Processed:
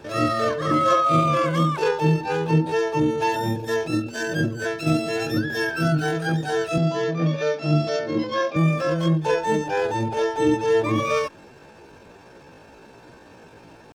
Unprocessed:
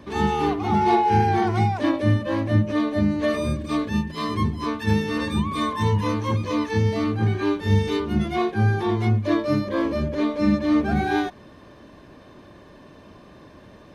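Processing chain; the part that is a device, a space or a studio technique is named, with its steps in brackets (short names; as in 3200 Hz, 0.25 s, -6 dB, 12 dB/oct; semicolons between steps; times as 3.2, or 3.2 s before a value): 6.79–8.58 Chebyshev band-pass 100–3800 Hz, order 3; chipmunk voice (pitch shift +7 st)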